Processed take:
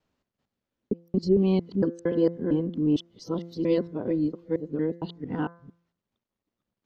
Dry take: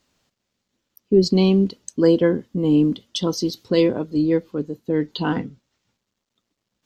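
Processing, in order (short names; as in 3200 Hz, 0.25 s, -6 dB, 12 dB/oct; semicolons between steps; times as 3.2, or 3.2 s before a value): local time reversal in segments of 0.228 s; LPF 1400 Hz 6 dB/oct; de-hum 170.5 Hz, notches 13; gain -6 dB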